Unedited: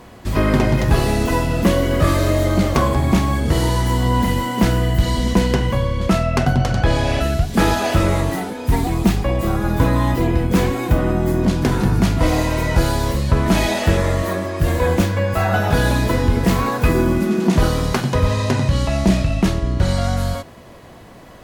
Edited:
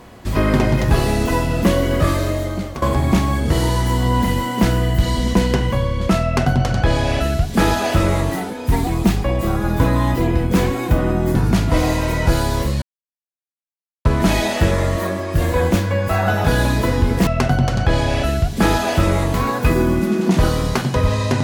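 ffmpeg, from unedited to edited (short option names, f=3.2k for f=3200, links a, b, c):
-filter_complex "[0:a]asplit=6[a][b][c][d][e][f];[a]atrim=end=2.82,asetpts=PTS-STARTPTS,afade=t=out:st=1.94:d=0.88:silence=0.188365[g];[b]atrim=start=2.82:end=11.352,asetpts=PTS-STARTPTS,afade=t=in:d=0.004:c=hsin:silence=0.188365[h];[c]atrim=start=11.838:end=13.31,asetpts=PTS-STARTPTS,afade=t=out:st=1.468:d=0.004:c=hsin,apad=pad_dur=1.23[i];[d]atrim=start=13.31:end=16.532,asetpts=PTS-STARTPTS,afade=t=in:d=0.004:c=hsin[j];[e]atrim=start=6.238:end=8.312[k];[f]atrim=start=16.528[l];[g][h]concat=n=2:v=0:a=1[m];[i][j]concat=n=2:v=0:a=1[n];[m][n]acrossfade=d=0.004:c1=hsin:c2=hsin[o];[o][k]acrossfade=d=0.004:c1=hsin:c2=hsin[p];[p][l]acrossfade=d=0.004:c1=hsin:c2=hsin"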